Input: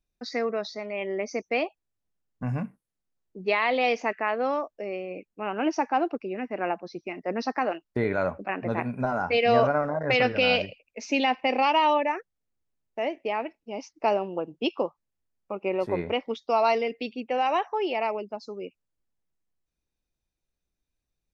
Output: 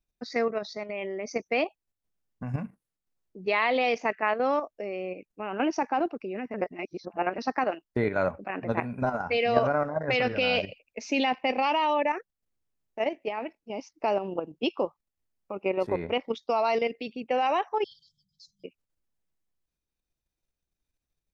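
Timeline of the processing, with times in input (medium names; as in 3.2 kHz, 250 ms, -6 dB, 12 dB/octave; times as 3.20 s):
6.54–7.38 s: reverse
17.84–18.64 s: brick-wall FIR band-stop 160–3100 Hz
whole clip: level held to a coarse grid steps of 9 dB; trim +2.5 dB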